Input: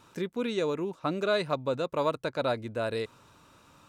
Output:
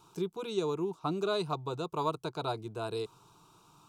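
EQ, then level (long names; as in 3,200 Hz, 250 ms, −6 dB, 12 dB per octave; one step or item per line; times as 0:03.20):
phaser with its sweep stopped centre 370 Hz, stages 8
0.0 dB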